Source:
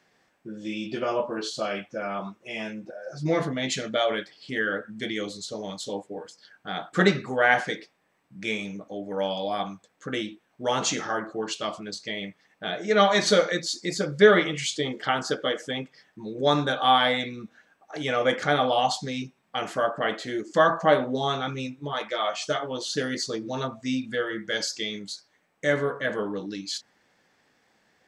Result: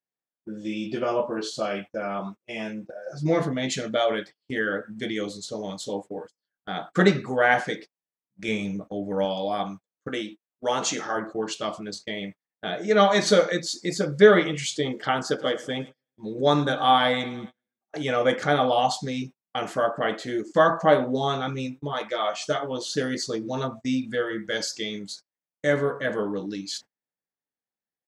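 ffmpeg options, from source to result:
-filter_complex "[0:a]asettb=1/sr,asplit=3[a][b][c];[a]atrim=end=8.484[d];[b]atrim=start=8.48:end=9.25,asetpts=PTS-STARTPTS,afade=t=in:d=0.004:c=qsin,afade=t=out:st=0.766:d=0.004:c=qsin,lowshelf=f=140:g=11[e];[c]atrim=start=9.246[f];[d][e]acrossfade=d=0.004:c1=hsin:c2=qsin[g];[g][f]acrossfade=d=0.004:c1=qsin:c2=hsin,asettb=1/sr,asplit=3[h][i][j];[h]atrim=end=10.084[k];[i]atrim=start=10.08:end=11.16,asetpts=PTS-STARTPTS,afade=t=in:d=0.004:c=qsin,afade=t=out:st=1.076:d=0.004:c=qsin,highpass=f=290:p=1[l];[j]atrim=start=11.156[m];[k][l]acrossfade=d=0.004:c1=hsin:c2=qsin[n];[n][m]acrossfade=d=0.004:c1=qsin:c2=hsin,asplit=3[o][p][q];[o]afade=t=out:st=15.38:d=0.02[r];[p]aecho=1:1:110|220|330|440|550:0.112|0.064|0.0365|0.0208|0.0118,afade=t=in:st=15.38:d=0.02,afade=t=out:st=17.96:d=0.02[s];[q]afade=t=in:st=17.96:d=0.02[t];[r][s][t]amix=inputs=3:normalize=0,agate=range=-34dB:threshold=-40dB:ratio=16:detection=peak,equalizer=f=3k:w=0.4:g=-4,volume=2.5dB"

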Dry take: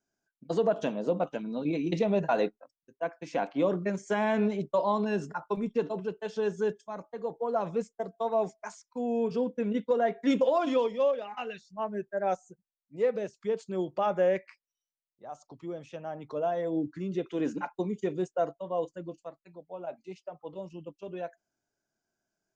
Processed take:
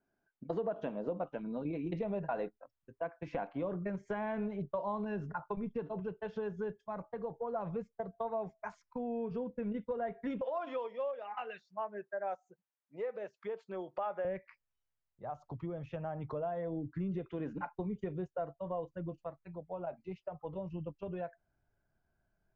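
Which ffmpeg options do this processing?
-filter_complex "[0:a]asettb=1/sr,asplit=3[a][b][c];[a]atrim=end=10.414[d];[b]atrim=start=10.41:end=14.25,asetpts=PTS-STARTPTS,afade=t=in:d=0.004:c=qsin,afade=t=out:st=3.836:d=0.004:c=qsin,highpass=470[e];[c]atrim=start=14.246[f];[d][e]acrossfade=d=0.004:c1=hsin:c2=qsin[g];[g][f]acrossfade=d=0.004:c1=qsin:c2=hsin,acompressor=threshold=-41dB:ratio=3,lowpass=1.9k,asubboost=boost=7.5:cutoff=100,volume=4.5dB"

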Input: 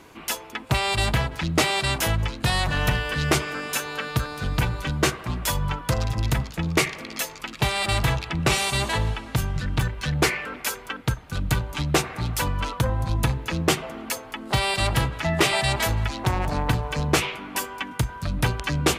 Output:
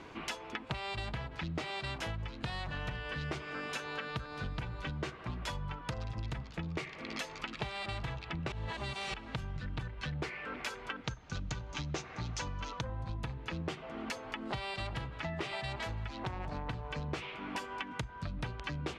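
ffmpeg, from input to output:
-filter_complex "[0:a]asettb=1/sr,asplit=3[a][b][c];[a]atrim=end=11.044[d];[b]atrim=start=11.04:end=12.81,asetpts=PTS-STARTPTS,afade=t=in:d=0.004:c=qsin,afade=t=out:st=1.766:d=0.004:c=qsin,lowpass=f=6.4k:t=q:w=4.4[e];[c]atrim=start=12.806[f];[d][e]acrossfade=d=0.004:c1=hsin:c2=qsin[g];[g][f]acrossfade=d=0.004:c1=qsin:c2=hsin,asplit=3[h][i][j];[h]atrim=end=8.522[k];[i]atrim=start=8.518:end=9.142,asetpts=PTS-STARTPTS,areverse[l];[j]atrim=start=9.138[m];[k][l]acrossfade=d=0.004:c1=hsin:c2=hsin[n];[n][m]acrossfade=d=0.004:c1=hsin:c2=hsin,lowpass=4.3k,acompressor=threshold=-35dB:ratio=8,volume=-1dB"

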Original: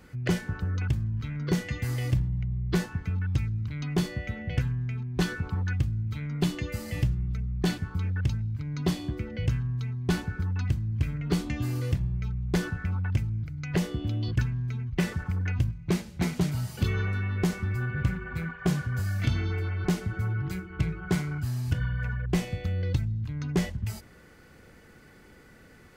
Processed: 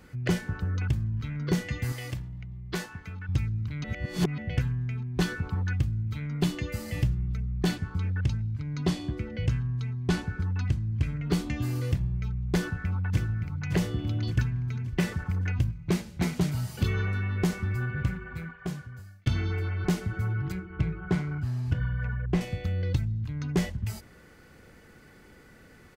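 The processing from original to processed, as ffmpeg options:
-filter_complex "[0:a]asettb=1/sr,asplit=3[a][b][c];[a]atrim=end=1.924[d];[b]atrim=start=1.92:end=3.29,asetpts=PTS-STARTPTS,afade=t=in:d=0.004:c=qsin,afade=t=out:st=1.366:d=0.004:c=qsin,lowshelf=f=370:g=-11[e];[c]atrim=start=3.286[f];[d][e]acrossfade=d=0.004:c1=hsin:c2=qsin[g];[g][f]acrossfade=d=0.004:c1=qsin:c2=hsin,asettb=1/sr,asplit=3[h][i][j];[h]atrim=end=7.764[k];[i]atrim=start=7.76:end=11.24,asetpts=PTS-STARTPTS,afade=t=in:d=0.004:c=qsin,afade=t=out:st=3.476:d=0.004:c=qsin,lowpass=9.9k[l];[j]atrim=start=11.236[m];[k][l]acrossfade=d=0.004:c1=hsin:c2=qsin[n];[n][m]acrossfade=d=0.004:c1=qsin:c2=hsin,asplit=2[o][p];[p]afade=t=in:st=12.56:d=0.01,afade=t=out:st=13.64:d=0.01,aecho=0:1:570|1140|1710|2280|2850|3420:0.421697|0.210848|0.105424|0.0527121|0.026356|0.013178[q];[o][q]amix=inputs=2:normalize=0,asettb=1/sr,asplit=3[r][s][t];[r]atrim=end=20.524[u];[s]atrim=start=20.52:end=22.41,asetpts=PTS-STARTPTS,afade=t=in:d=0.004:c=qsin,afade=t=out:st=1.886:d=0.004:c=qsin,aemphasis=mode=reproduction:type=75kf[v];[t]atrim=start=22.406[w];[u][v]acrossfade=d=0.004:c1=hsin:c2=qsin[x];[x][w]acrossfade=d=0.004:c1=qsin:c2=hsin,asplit=4[y][z][aa][ab];[y]atrim=end=3.842[ac];[z]atrim=start=3.838:end=4.382,asetpts=PTS-STARTPTS,areverse[ad];[aa]atrim=start=4.378:end=19.26,asetpts=PTS-STARTPTS,afade=t=out:st=13.422:d=1.46[ae];[ab]atrim=start=19.26,asetpts=PTS-STARTPTS,afade=t=in:d=0.004:c=hsin[af];[ac][ad]acrossfade=d=0.004:c1=hsin:c2=hsin[ag];[ae][af]concat=n=2:v=0:a=1[ah];[ag][ah]acrossfade=d=0.004:c1=hsin:c2=hsin"

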